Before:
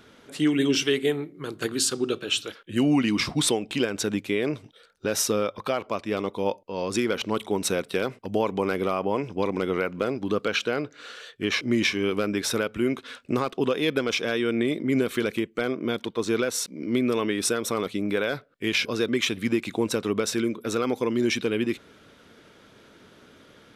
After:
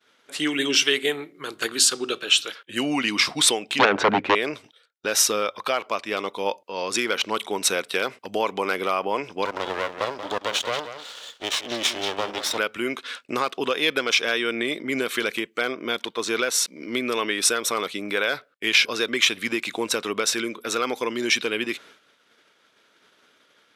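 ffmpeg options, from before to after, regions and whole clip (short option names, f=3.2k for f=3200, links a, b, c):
-filter_complex "[0:a]asettb=1/sr,asplit=3[a][b][c];[a]atrim=end=3.794[d];[b]atrim=start=3.79:end=4.35,asetpts=PTS-STARTPTS,afade=t=in:d=0.004:c=qsin,afade=t=out:st=0.556:d=0.004:c=qsin,lowpass=1.3k,aeval=exprs='0.211*sin(PI/2*3.55*val(0)/0.211)':c=same[e];[c]atrim=start=4.346[f];[d][e]acrossfade=d=0.004:c1=hsin:c2=qsin[g];[g][f]acrossfade=d=0.004:c1=qsin:c2=hsin,asettb=1/sr,asplit=3[h][i][j];[h]atrim=end=9.454[k];[i]atrim=start=9.45:end=12.58,asetpts=PTS-STARTPTS,afade=t=in:d=0.004:c=qsin,afade=t=out:st=3.126:d=0.004:c=qsin,highpass=f=220:w=0.5412,highpass=f=220:w=1.3066,equalizer=f=590:t=q:w=4:g=8,equalizer=f=930:t=q:w=4:g=10,equalizer=f=1.6k:t=q:w=4:g=-8,equalizer=f=2.3k:t=q:w=4:g=-9,equalizer=f=3.4k:t=q:w=4:g=6,lowpass=f=7.3k:w=0.5412,lowpass=f=7.3k:w=1.3066,aecho=1:1:183:0.299,atrim=end_sample=138033,aeval=exprs='max(val(0),0)':c=same[l];[j]atrim=start=12.576[m];[k][l]acrossfade=d=0.004:c1=hsin:c2=qsin[n];[n][m]acrossfade=d=0.004:c1=qsin:c2=hsin,agate=range=-33dB:threshold=-44dB:ratio=3:detection=peak,highpass=f=1.3k:p=1,highshelf=f=7.8k:g=-4,volume=8.5dB"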